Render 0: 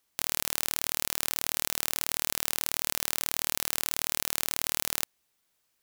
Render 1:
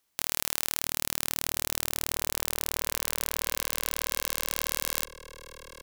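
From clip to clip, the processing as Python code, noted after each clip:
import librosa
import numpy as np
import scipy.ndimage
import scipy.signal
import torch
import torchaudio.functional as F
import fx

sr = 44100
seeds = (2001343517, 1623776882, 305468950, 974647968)

y = fx.echo_opening(x, sr, ms=649, hz=200, octaves=1, feedback_pct=70, wet_db=-3)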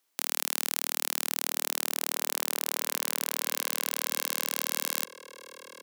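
y = scipy.signal.sosfilt(scipy.signal.butter(4, 230.0, 'highpass', fs=sr, output='sos'), x)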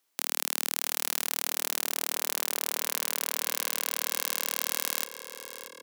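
y = x + 10.0 ** (-13.0 / 20.0) * np.pad(x, (int(629 * sr / 1000.0), 0))[:len(x)]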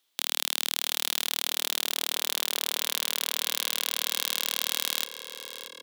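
y = fx.peak_eq(x, sr, hz=3500.0, db=12.0, octaves=0.64)
y = y * librosa.db_to_amplitude(-1.0)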